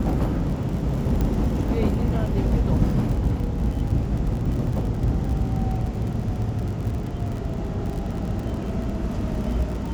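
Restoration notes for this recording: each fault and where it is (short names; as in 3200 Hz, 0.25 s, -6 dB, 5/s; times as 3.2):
crackle 45/s -30 dBFS
1.21 pop -13 dBFS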